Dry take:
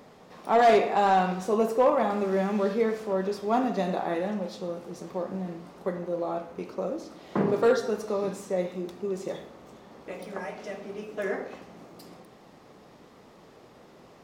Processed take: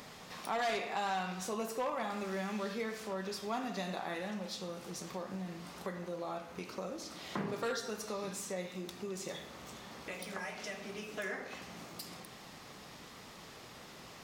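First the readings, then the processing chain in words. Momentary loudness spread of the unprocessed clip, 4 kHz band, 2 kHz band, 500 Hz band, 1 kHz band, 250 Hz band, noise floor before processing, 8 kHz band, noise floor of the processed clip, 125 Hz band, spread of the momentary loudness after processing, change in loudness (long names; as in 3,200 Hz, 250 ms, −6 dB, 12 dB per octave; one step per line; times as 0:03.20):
16 LU, −0.5 dB, −5.0 dB, −14.0 dB, −12.0 dB, −11.0 dB, −53 dBFS, +2.5 dB, −52 dBFS, −9.0 dB, 15 LU, −12.0 dB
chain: guitar amp tone stack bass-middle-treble 5-5-5
downward compressor 2 to 1, threshold −60 dBFS, peak gain reduction 15 dB
level +16.5 dB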